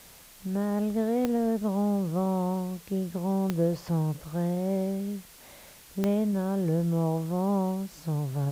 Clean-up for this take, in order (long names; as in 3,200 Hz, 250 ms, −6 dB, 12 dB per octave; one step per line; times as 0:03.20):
click removal
noise reduction from a noise print 24 dB